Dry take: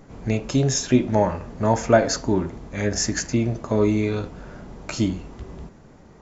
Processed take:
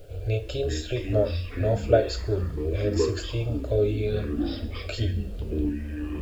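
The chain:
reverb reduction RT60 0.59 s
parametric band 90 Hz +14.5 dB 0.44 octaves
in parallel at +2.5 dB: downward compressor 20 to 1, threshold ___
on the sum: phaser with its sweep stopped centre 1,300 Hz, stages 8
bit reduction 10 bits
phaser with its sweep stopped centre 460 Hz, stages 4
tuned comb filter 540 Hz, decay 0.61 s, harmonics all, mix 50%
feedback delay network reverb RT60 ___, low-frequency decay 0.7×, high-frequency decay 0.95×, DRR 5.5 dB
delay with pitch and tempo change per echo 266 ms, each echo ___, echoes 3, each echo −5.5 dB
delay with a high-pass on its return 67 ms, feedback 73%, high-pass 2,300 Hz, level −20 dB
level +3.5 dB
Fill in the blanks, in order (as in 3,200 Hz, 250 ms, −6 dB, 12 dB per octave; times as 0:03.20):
−31 dBFS, 0.38 s, −6 semitones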